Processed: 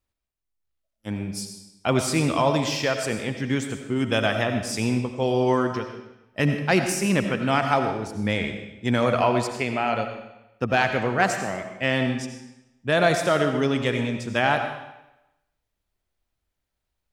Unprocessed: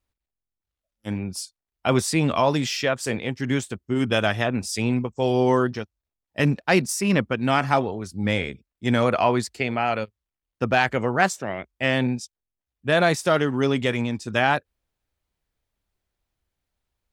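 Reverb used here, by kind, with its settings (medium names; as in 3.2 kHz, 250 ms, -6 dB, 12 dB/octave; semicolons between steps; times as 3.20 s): algorithmic reverb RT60 0.93 s, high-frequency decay 0.95×, pre-delay 45 ms, DRR 6 dB; trim -1.5 dB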